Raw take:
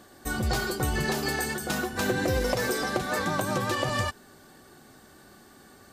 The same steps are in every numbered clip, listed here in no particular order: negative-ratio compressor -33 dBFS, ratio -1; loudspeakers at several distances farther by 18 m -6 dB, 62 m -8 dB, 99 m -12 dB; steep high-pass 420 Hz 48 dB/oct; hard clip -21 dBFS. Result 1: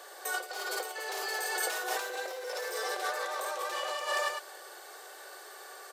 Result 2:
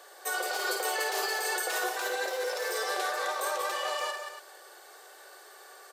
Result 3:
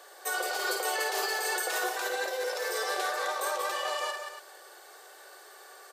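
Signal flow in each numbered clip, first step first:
hard clip > loudspeakers at several distances > negative-ratio compressor > steep high-pass; hard clip > steep high-pass > negative-ratio compressor > loudspeakers at several distances; steep high-pass > negative-ratio compressor > hard clip > loudspeakers at several distances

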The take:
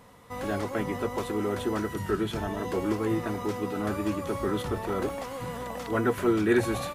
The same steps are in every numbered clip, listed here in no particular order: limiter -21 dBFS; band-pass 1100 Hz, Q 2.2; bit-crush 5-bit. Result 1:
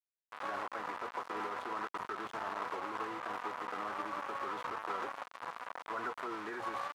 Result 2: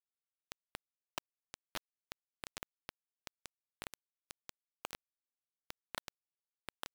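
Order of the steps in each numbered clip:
bit-crush > limiter > band-pass; limiter > band-pass > bit-crush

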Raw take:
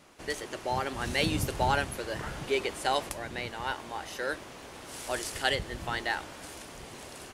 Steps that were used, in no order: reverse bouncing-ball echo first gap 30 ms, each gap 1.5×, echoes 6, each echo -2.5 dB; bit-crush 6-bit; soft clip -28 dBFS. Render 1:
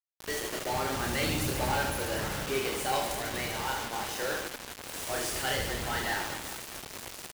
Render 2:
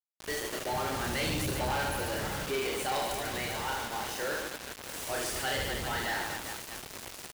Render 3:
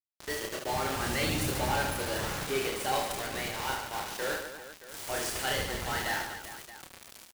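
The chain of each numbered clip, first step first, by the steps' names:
soft clip > reverse bouncing-ball echo > bit-crush; reverse bouncing-ball echo > bit-crush > soft clip; bit-crush > soft clip > reverse bouncing-ball echo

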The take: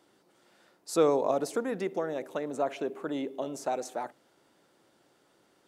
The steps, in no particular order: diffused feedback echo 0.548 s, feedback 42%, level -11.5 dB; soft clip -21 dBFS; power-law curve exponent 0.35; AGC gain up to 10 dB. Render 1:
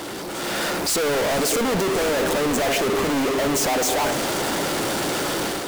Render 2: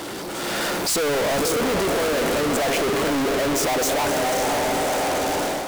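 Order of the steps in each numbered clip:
power-law curve > AGC > soft clip > diffused feedback echo; diffused feedback echo > power-law curve > AGC > soft clip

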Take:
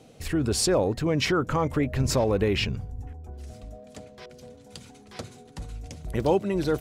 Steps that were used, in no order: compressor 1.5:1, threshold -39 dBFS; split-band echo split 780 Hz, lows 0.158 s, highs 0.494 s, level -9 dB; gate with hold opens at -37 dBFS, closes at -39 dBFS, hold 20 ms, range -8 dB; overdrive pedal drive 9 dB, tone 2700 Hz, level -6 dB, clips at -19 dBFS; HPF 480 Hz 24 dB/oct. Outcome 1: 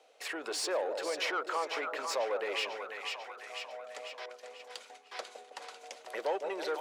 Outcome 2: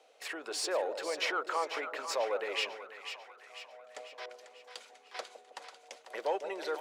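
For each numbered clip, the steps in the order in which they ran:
split-band echo > overdrive pedal > gate with hold > HPF > compressor; compressor > overdrive pedal > HPF > gate with hold > split-band echo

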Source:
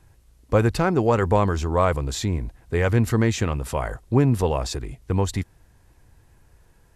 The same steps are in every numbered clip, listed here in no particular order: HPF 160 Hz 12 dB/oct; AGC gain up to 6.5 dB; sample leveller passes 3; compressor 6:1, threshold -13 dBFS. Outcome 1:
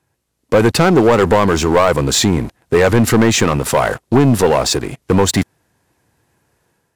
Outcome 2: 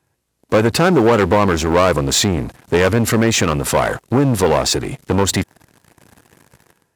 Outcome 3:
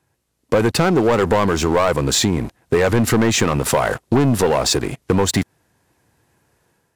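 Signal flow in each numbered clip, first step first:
AGC > HPF > compressor > sample leveller; AGC > compressor > sample leveller > HPF; HPF > AGC > sample leveller > compressor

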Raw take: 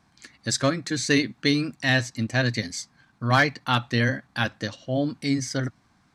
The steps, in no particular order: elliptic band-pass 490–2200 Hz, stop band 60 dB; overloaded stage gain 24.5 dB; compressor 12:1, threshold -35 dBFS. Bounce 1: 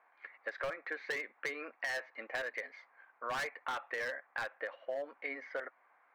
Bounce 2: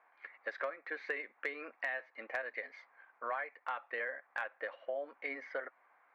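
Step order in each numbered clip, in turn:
elliptic band-pass > overloaded stage > compressor; elliptic band-pass > compressor > overloaded stage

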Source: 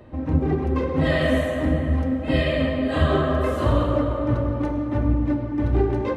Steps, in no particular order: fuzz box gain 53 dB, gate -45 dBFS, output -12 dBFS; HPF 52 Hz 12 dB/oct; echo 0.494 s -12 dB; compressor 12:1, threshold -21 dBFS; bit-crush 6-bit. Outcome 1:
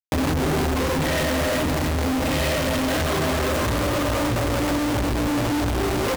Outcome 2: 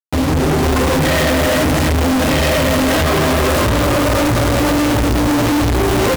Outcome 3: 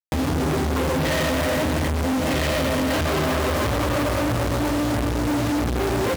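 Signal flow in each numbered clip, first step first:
bit-crush > HPF > fuzz box > echo > compressor; HPF > bit-crush > compressor > echo > fuzz box; echo > bit-crush > fuzz box > compressor > HPF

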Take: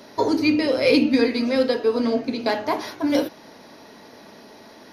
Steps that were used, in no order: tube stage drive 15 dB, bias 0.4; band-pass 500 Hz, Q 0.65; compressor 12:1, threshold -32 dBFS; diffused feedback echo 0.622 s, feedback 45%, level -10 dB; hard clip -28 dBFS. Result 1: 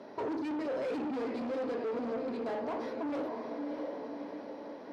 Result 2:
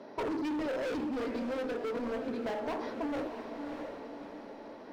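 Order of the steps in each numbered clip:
tube stage > diffused feedback echo > hard clip > compressor > band-pass; tube stage > band-pass > hard clip > diffused feedback echo > compressor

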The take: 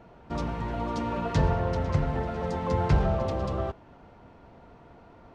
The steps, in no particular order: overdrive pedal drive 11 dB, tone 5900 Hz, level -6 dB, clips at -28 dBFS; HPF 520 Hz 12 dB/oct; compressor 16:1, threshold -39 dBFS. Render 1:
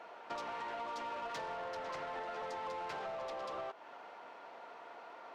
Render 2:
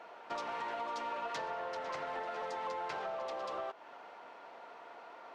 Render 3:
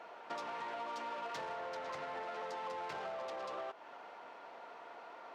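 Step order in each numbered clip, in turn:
HPF > overdrive pedal > compressor; HPF > compressor > overdrive pedal; overdrive pedal > HPF > compressor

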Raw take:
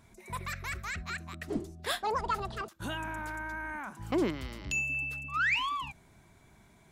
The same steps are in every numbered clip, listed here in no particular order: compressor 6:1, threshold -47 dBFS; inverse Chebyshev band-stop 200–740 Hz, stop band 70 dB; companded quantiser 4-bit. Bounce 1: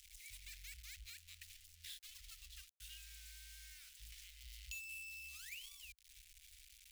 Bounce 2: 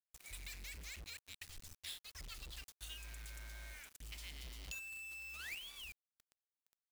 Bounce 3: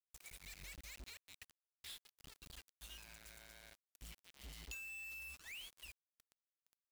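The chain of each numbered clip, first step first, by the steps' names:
compressor > companded quantiser > inverse Chebyshev band-stop; inverse Chebyshev band-stop > compressor > companded quantiser; compressor > inverse Chebyshev band-stop > companded quantiser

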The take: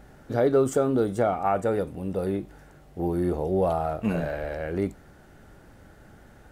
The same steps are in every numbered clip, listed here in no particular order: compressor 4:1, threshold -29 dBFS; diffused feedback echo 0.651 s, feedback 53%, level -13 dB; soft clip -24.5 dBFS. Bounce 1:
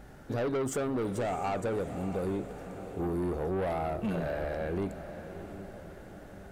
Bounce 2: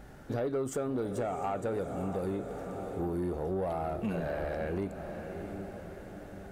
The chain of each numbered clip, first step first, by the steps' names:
soft clip > diffused feedback echo > compressor; diffused feedback echo > compressor > soft clip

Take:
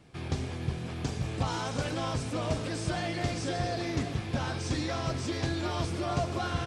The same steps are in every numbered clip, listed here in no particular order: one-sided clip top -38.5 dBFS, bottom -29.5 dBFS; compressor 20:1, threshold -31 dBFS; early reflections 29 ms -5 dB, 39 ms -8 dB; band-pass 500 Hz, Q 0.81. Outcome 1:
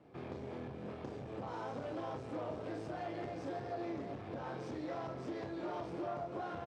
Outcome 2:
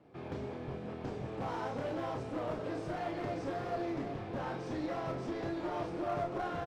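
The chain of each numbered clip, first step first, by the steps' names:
early reflections > compressor > one-sided clip > band-pass; band-pass > compressor > one-sided clip > early reflections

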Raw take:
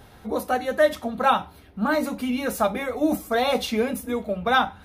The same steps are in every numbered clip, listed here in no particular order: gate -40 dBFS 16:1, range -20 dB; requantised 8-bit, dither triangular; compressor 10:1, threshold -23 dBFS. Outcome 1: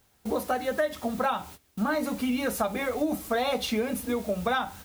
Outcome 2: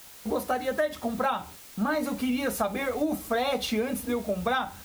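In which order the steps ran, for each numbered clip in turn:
requantised > gate > compressor; gate > requantised > compressor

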